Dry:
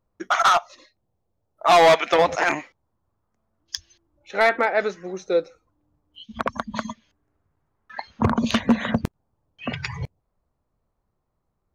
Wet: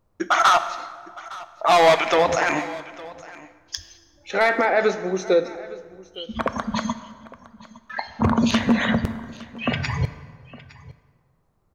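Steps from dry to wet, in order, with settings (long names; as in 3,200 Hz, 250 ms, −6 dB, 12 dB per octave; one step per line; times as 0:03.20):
brickwall limiter −18 dBFS, peak gain reduction 8 dB
on a send: single-tap delay 861 ms −20 dB
on the sum: dense smooth reverb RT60 1.7 s, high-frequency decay 0.65×, DRR 10.5 dB
level +7 dB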